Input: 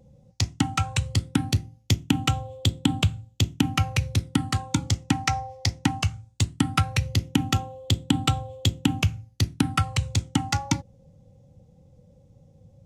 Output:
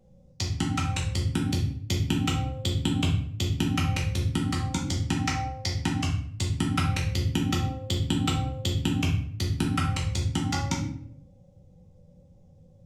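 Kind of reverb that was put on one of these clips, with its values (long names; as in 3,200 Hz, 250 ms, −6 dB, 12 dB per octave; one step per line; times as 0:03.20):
rectangular room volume 99 cubic metres, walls mixed, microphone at 1.1 metres
level −7 dB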